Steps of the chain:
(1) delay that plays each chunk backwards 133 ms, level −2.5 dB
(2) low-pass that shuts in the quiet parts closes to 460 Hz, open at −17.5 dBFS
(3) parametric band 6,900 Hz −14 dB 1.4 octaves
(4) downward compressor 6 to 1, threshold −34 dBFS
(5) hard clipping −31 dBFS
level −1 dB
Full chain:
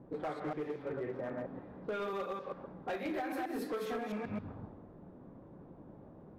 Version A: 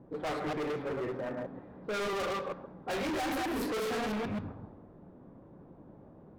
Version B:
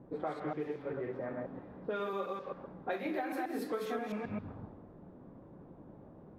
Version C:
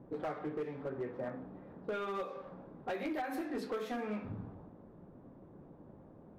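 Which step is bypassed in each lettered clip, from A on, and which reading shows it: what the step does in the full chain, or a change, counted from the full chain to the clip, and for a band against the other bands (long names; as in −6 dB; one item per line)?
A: 4, average gain reduction 8.0 dB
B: 5, distortion level −16 dB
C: 1, change in momentary loudness spread +1 LU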